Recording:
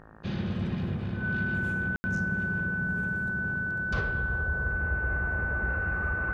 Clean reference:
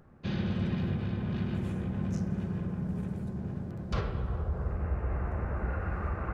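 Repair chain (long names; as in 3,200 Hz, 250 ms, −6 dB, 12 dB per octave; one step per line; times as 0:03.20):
hum removal 54 Hz, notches 34
notch filter 1,500 Hz, Q 30
ambience match 0:01.96–0:02.04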